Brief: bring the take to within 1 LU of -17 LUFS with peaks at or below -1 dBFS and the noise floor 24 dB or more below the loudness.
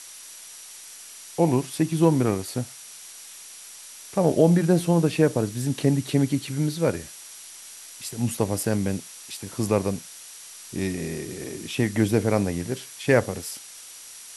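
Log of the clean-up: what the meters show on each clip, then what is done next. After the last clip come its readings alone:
steady tone 5.8 kHz; tone level -50 dBFS; noise floor -43 dBFS; noise floor target -49 dBFS; loudness -24.5 LUFS; peak level -5.0 dBFS; loudness target -17.0 LUFS
-> band-stop 5.8 kHz, Q 30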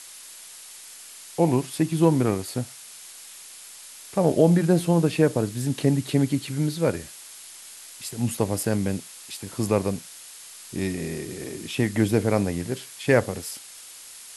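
steady tone not found; noise floor -44 dBFS; noise floor target -49 dBFS
-> noise print and reduce 6 dB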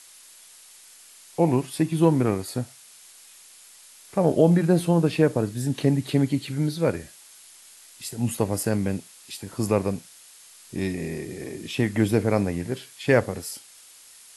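noise floor -50 dBFS; loudness -24.5 LUFS; peak level -5.0 dBFS; loudness target -17.0 LUFS
-> trim +7.5 dB; peak limiter -1 dBFS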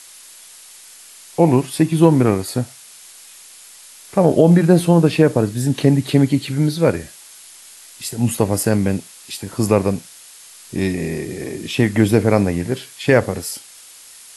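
loudness -17.5 LUFS; peak level -1.0 dBFS; noise floor -42 dBFS

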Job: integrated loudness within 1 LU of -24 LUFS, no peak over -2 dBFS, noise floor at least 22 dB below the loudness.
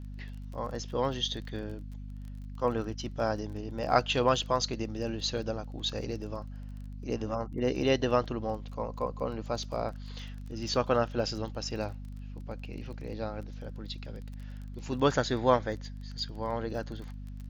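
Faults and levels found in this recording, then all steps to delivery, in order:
tick rate 21 per s; hum 50 Hz; highest harmonic 250 Hz; hum level -39 dBFS; loudness -32.5 LUFS; peak level -8.5 dBFS; loudness target -24.0 LUFS
-> de-click; de-hum 50 Hz, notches 5; trim +8.5 dB; peak limiter -2 dBFS

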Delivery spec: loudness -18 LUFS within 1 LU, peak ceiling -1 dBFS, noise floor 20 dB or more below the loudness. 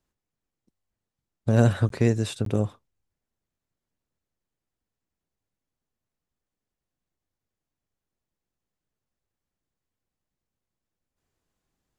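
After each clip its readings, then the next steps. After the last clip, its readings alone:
dropouts 2; longest dropout 13 ms; loudness -24.5 LUFS; peak level -6.0 dBFS; loudness target -18.0 LUFS
-> interpolate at 1.89/2.45 s, 13 ms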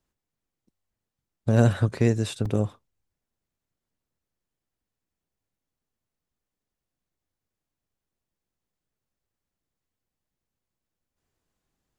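dropouts 0; loudness -24.5 LUFS; peak level -6.0 dBFS; loudness target -18.0 LUFS
-> trim +6.5 dB; peak limiter -1 dBFS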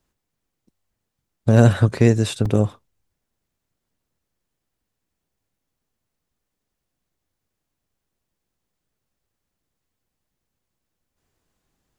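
loudness -18.0 LUFS; peak level -1.0 dBFS; noise floor -81 dBFS

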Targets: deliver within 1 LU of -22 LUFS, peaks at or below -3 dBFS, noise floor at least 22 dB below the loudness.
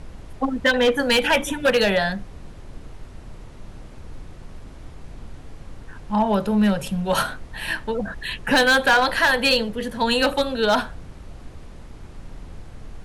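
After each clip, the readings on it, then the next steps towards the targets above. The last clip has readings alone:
clipped samples 0.7%; clipping level -11.5 dBFS; noise floor -41 dBFS; noise floor target -43 dBFS; loudness -20.5 LUFS; peak level -11.5 dBFS; loudness target -22.0 LUFS
-> clip repair -11.5 dBFS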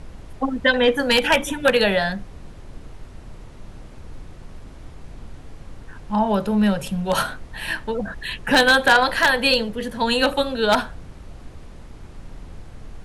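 clipped samples 0.0%; noise floor -41 dBFS; noise floor target -42 dBFS
-> noise print and reduce 6 dB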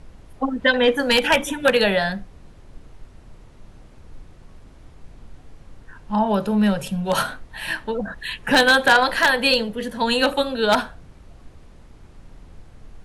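noise floor -47 dBFS; loudness -19.5 LUFS; peak level -2.5 dBFS; loudness target -22.0 LUFS
-> trim -2.5 dB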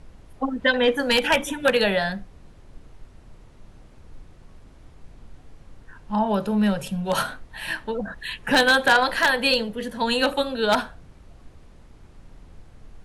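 loudness -22.0 LUFS; peak level -5.0 dBFS; noise floor -50 dBFS

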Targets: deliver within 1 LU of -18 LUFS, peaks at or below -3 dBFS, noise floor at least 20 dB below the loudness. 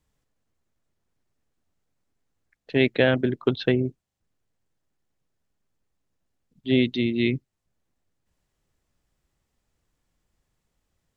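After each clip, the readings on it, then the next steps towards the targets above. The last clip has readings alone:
loudness -24.0 LUFS; peak level -5.0 dBFS; loudness target -18.0 LUFS
-> trim +6 dB; peak limiter -3 dBFS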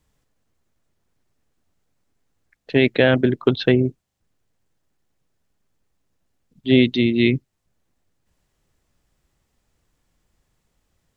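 loudness -18.5 LUFS; peak level -3.0 dBFS; noise floor -73 dBFS

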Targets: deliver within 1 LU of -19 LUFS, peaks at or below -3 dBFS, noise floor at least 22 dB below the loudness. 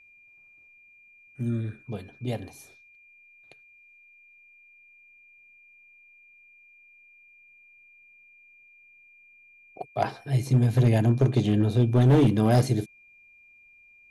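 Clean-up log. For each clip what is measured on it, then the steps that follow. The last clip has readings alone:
clipped samples 0.8%; clipping level -14.0 dBFS; steady tone 2.4 kHz; tone level -53 dBFS; loudness -24.0 LUFS; peak level -14.0 dBFS; loudness target -19.0 LUFS
-> clip repair -14 dBFS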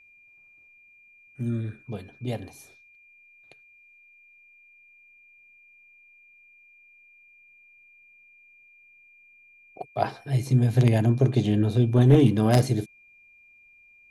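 clipped samples 0.0%; steady tone 2.4 kHz; tone level -53 dBFS
-> band-stop 2.4 kHz, Q 30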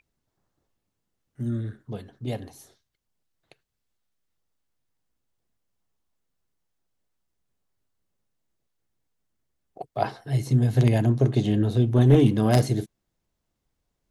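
steady tone not found; loudness -22.5 LUFS; peak level -5.0 dBFS; loudness target -19.0 LUFS
-> trim +3.5 dB; peak limiter -3 dBFS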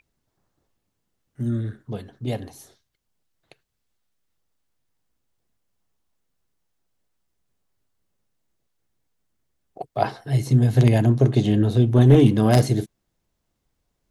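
loudness -19.0 LUFS; peak level -3.0 dBFS; noise floor -77 dBFS

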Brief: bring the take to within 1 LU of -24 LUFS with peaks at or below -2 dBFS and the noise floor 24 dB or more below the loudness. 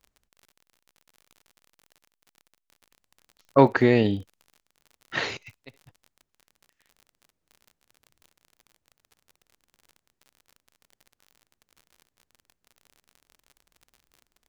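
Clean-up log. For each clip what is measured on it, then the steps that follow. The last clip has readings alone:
tick rate 46 per s; loudness -23.0 LUFS; peak level -2.5 dBFS; loudness target -24.0 LUFS
-> de-click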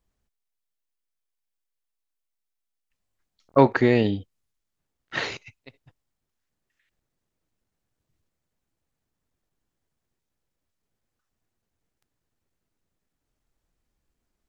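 tick rate 0.069 per s; loudness -22.5 LUFS; peak level -2.5 dBFS; loudness target -24.0 LUFS
-> trim -1.5 dB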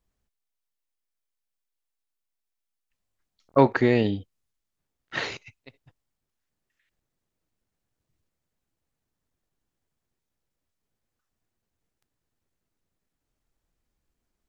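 loudness -24.0 LUFS; peak level -4.0 dBFS; noise floor -83 dBFS

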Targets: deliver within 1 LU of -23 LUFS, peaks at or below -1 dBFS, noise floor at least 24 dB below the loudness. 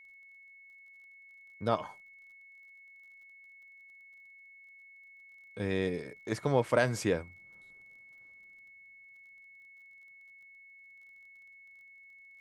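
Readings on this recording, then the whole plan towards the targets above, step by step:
tick rate 19 per s; steady tone 2.2 kHz; tone level -53 dBFS; loudness -32.0 LUFS; peak level -12.0 dBFS; loudness target -23.0 LUFS
-> de-click; band-stop 2.2 kHz, Q 30; trim +9 dB

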